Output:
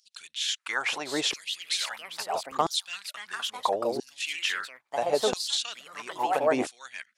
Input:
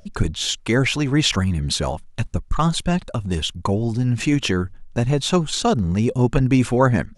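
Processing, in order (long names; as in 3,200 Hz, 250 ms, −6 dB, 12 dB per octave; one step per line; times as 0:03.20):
delay with pitch and tempo change per echo 751 ms, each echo +3 semitones, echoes 2, each echo −6 dB
auto-filter high-pass saw down 0.75 Hz 370–4,800 Hz
dynamic equaliser 760 Hz, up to +5 dB, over −32 dBFS, Q 1.7
level −8 dB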